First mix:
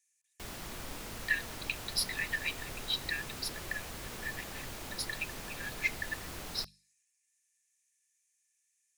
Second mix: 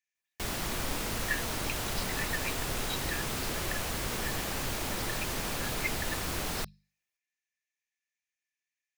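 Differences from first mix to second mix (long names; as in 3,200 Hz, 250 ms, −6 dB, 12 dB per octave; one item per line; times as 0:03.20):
speech: add high-frequency loss of the air 250 metres
background +9.5 dB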